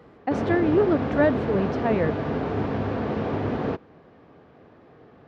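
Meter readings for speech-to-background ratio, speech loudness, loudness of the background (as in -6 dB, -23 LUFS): 3.0 dB, -24.5 LUFS, -27.5 LUFS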